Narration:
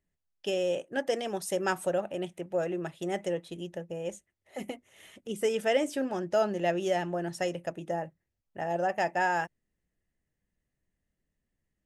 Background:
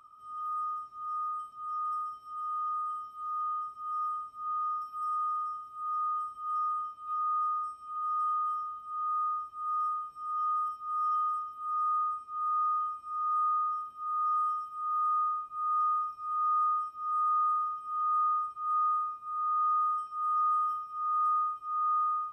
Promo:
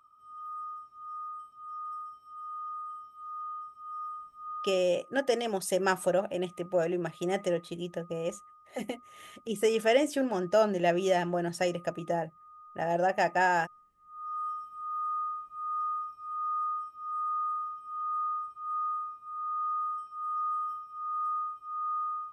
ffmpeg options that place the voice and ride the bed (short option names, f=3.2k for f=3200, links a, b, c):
-filter_complex "[0:a]adelay=4200,volume=2dB[a];[1:a]volume=13.5dB,afade=t=out:st=4.63:d=0.2:silence=0.133352,afade=t=in:st=14.07:d=0.41:silence=0.112202[b];[a][b]amix=inputs=2:normalize=0"